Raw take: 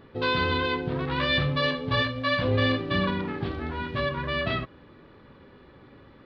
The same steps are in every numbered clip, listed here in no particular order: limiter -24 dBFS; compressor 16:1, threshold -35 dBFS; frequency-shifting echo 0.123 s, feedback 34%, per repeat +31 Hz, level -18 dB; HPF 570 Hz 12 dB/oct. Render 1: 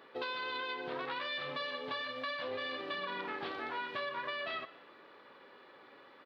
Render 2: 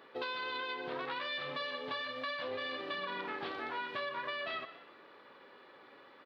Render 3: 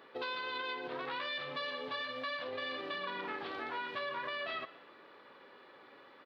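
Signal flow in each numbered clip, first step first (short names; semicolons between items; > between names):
HPF > limiter > compressor > frequency-shifting echo; HPF > limiter > frequency-shifting echo > compressor; limiter > HPF > compressor > frequency-shifting echo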